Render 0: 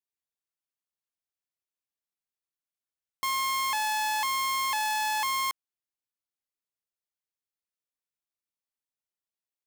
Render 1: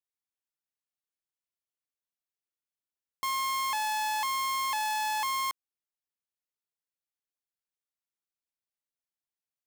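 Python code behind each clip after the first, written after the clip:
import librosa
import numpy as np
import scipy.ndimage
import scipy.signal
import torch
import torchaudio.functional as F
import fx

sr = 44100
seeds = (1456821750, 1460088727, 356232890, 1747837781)

y = fx.leveller(x, sr, passes=1)
y = y * 10.0 ** (-3.0 / 20.0)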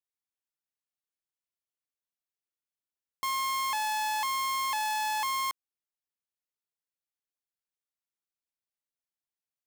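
y = x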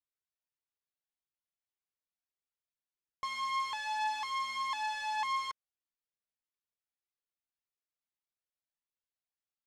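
y = scipy.signal.sosfilt(scipy.signal.butter(2, 4700.0, 'lowpass', fs=sr, output='sos'), x)
y = fx.comb_cascade(y, sr, direction='rising', hz=1.7)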